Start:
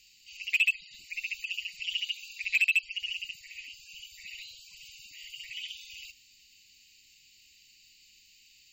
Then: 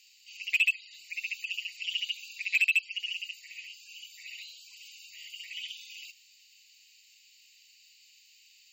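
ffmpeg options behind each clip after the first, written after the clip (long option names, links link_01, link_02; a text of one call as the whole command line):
ffmpeg -i in.wav -af "highpass=630" out.wav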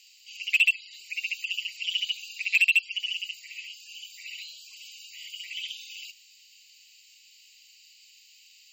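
ffmpeg -i in.wav -af "afreqshift=64,volume=4dB" out.wav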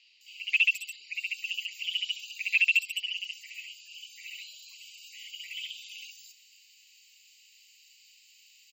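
ffmpeg -i in.wav -filter_complex "[0:a]acrossover=split=4500[link_01][link_02];[link_02]adelay=210[link_03];[link_01][link_03]amix=inputs=2:normalize=0,volume=-1.5dB" out.wav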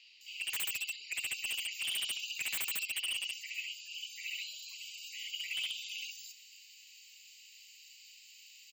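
ffmpeg -i in.wav -af "aeval=exprs='0.0251*(abs(mod(val(0)/0.0251+3,4)-2)-1)':channel_layout=same,volume=2.5dB" out.wav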